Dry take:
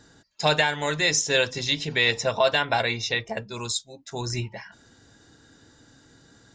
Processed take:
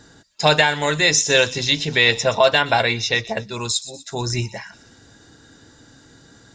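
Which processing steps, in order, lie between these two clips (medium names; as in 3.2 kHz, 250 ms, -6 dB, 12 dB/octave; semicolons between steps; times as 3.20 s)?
feedback echo behind a high-pass 122 ms, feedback 49%, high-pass 4.3 kHz, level -12 dB; trim +6 dB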